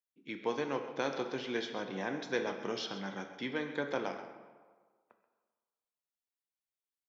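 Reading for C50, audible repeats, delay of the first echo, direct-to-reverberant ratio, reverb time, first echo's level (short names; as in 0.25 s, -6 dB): 7.0 dB, 1, 0.132 s, 5.5 dB, 1.5 s, -13.5 dB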